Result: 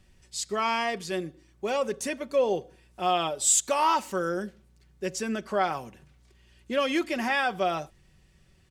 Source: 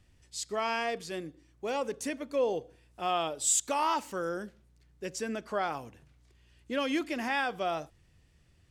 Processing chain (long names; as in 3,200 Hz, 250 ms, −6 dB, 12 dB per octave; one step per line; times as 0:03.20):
comb filter 5.3 ms, depth 46%
level +4 dB